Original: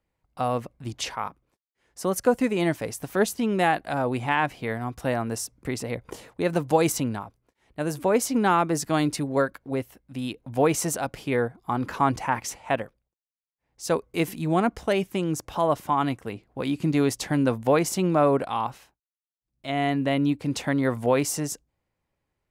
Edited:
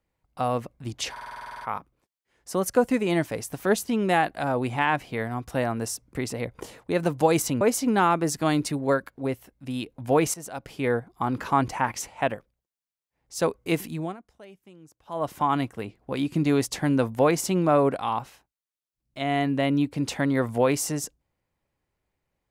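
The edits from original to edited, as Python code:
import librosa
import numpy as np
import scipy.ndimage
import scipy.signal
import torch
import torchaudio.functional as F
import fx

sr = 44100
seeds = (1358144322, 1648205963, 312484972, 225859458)

y = fx.edit(x, sr, fx.stutter(start_s=1.11, slice_s=0.05, count=11),
    fx.cut(start_s=7.11, length_s=0.98),
    fx.fade_in_from(start_s=10.82, length_s=0.58, floor_db=-17.5),
    fx.fade_down_up(start_s=14.32, length_s=1.54, db=-23.5, fade_s=0.33), tone=tone)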